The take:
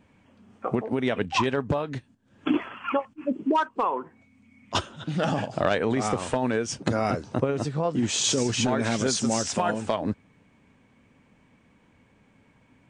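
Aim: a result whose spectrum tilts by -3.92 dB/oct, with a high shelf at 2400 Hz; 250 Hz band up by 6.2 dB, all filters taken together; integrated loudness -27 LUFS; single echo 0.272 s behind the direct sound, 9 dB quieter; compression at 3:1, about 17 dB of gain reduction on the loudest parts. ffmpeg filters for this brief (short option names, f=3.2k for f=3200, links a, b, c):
-af "equalizer=f=250:t=o:g=7,highshelf=f=2.4k:g=7,acompressor=threshold=-38dB:ratio=3,aecho=1:1:272:0.355,volume=9.5dB"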